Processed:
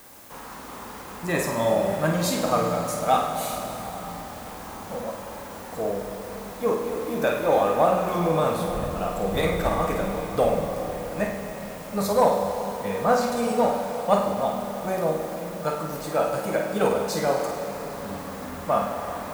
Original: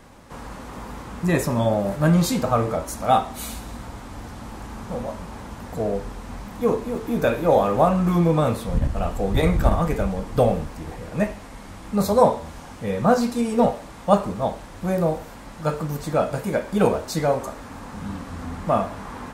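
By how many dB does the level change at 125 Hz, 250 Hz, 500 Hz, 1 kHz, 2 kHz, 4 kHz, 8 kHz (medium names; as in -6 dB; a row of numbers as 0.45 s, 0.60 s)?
-8.0 dB, -5.5 dB, -1.0 dB, -0.5 dB, +0.5 dB, +0.5 dB, +1.0 dB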